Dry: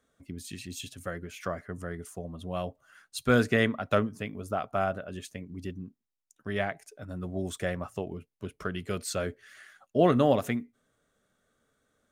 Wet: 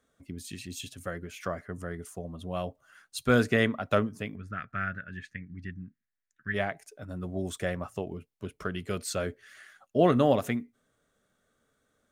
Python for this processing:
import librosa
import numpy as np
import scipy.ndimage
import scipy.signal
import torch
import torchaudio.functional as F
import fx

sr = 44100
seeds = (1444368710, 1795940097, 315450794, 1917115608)

y = fx.curve_eq(x, sr, hz=(170.0, 840.0, 1700.0, 3000.0, 4400.0, 13000.0), db=(0, -23, 12, -8, -9, -26), at=(4.35, 6.53), fade=0.02)